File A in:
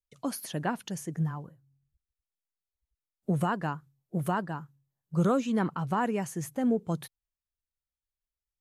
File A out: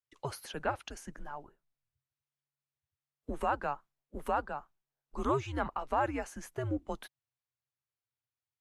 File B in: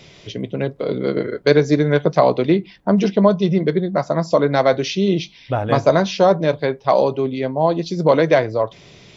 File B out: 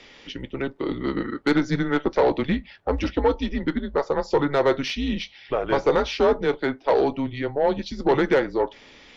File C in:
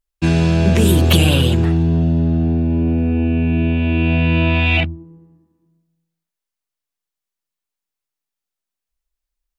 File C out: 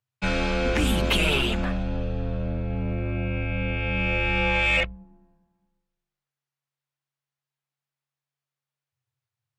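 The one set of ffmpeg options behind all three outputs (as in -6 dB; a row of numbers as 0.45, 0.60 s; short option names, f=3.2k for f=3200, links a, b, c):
-filter_complex "[0:a]afreqshift=-140,asplit=2[a][b];[b]highpass=f=720:p=1,volume=17dB,asoftclip=type=tanh:threshold=0dB[c];[a][c]amix=inputs=2:normalize=0,lowpass=f=2k:p=1,volume=-6dB,volume=-8.5dB"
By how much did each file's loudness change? -5.0, -6.0, -9.0 LU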